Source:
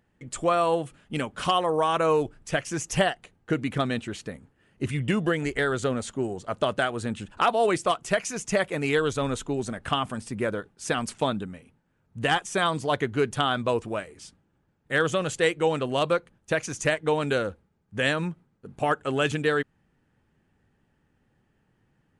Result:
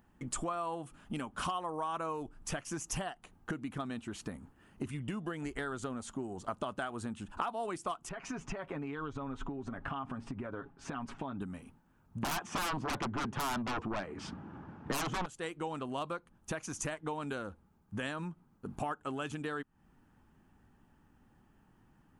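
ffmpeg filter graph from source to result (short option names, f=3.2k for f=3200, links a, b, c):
-filter_complex "[0:a]asettb=1/sr,asplit=3[a][b][c];[a]atrim=end=8.094[d];[b]atrim=start=8.09:end=11.41,asetpts=PTS-STARTPTS,afade=t=in:d=0.004:c=qsin,afade=t=out:st=3.316:d=0.004:c=qsin,lowpass=2.4k,aecho=1:1:7.3:0.54,atrim=end_sample=146412,acompressor=threshold=-35dB:ratio=5:attack=3.2:release=140:knee=1:detection=peak[e];[c]atrim=start=11.406[f];[d][e]acrossfade=d=0.004:c1=hsin:c2=qsin[g];[g][f]acrossfade=d=0.004:c1=qsin:c2=hsin,asettb=1/sr,asplit=3[h][i][j];[h]atrim=end=12.234[k];[i]atrim=start=12.23:end=15.26,asetpts=PTS-STARTPTS,afade=t=in:d=0.004:c=qsin,afade=t=out:st=3.026:d=0.004:c=qsin,highpass=100,lowpass=2.3k,aeval=exprs='0.282*sin(PI/2*7.08*val(0)/0.282)':c=same[l];[j]atrim=start=15.256[m];[k][l]acrossfade=d=0.004:c1=hsin:c2=qsin[n];[n][m]acrossfade=d=0.004:c1=qsin:c2=hsin,equalizer=f=125:t=o:w=1:g=-4,equalizer=f=250:t=o:w=1:g=3,equalizer=f=500:t=o:w=1:g=-10,equalizer=f=1k:t=o:w=1:g=3,equalizer=f=2k:t=o:w=1:g=-9,equalizer=f=4k:t=o:w=1:g=-7,equalizer=f=8k:t=o:w=1:g=-5,acompressor=threshold=-41dB:ratio=8,equalizer=f=140:w=0.43:g=-4.5,volume=8dB"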